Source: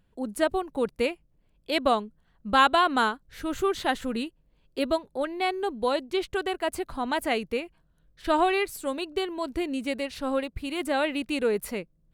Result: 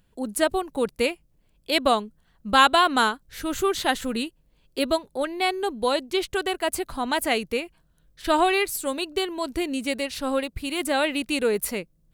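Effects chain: treble shelf 3.8 kHz +9 dB; trim +2 dB

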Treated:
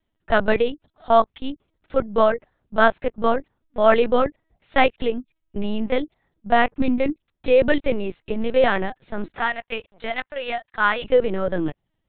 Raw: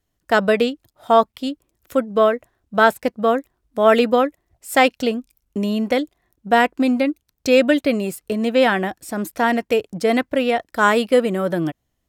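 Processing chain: 9.39–11.04 s: high-pass 870 Hz 12 dB/octave; LPC vocoder at 8 kHz pitch kept; trim -1.5 dB

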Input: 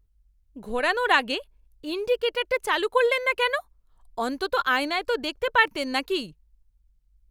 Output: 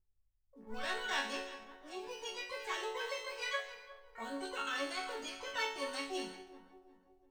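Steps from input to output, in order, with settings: backward echo that repeats 179 ms, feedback 66%, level -13 dB; level-controlled noise filter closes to 630 Hz, open at -21 dBFS; Chebyshev low-pass 8.3 kHz, order 4; in parallel at -9.5 dB: short-mantissa float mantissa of 2-bit; on the sum: chord resonator F#3 minor, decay 0.54 s; harmony voices +12 st -6 dB; trim +2.5 dB

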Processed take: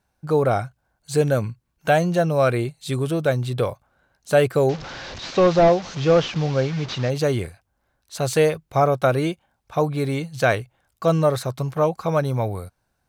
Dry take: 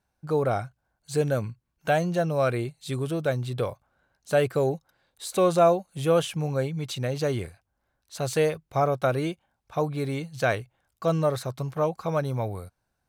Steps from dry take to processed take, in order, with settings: 4.69–7.10 s: one-bit delta coder 32 kbps, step -34.5 dBFS; trim +5.5 dB

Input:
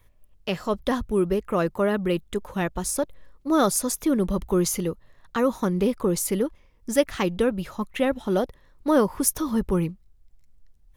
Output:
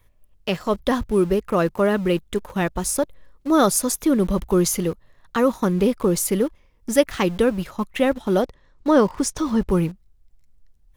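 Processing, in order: 8.42–9.69 s: low-pass 7.8 kHz 24 dB/octave; in parallel at -5.5 dB: small samples zeroed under -33.5 dBFS

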